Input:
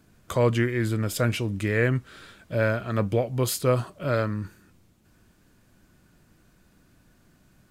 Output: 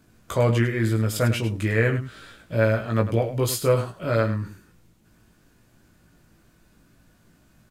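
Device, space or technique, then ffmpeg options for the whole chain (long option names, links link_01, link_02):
slapback doubling: -filter_complex "[0:a]asplit=3[link_01][link_02][link_03];[link_02]adelay=18,volume=-4dB[link_04];[link_03]adelay=102,volume=-10.5dB[link_05];[link_01][link_04][link_05]amix=inputs=3:normalize=0"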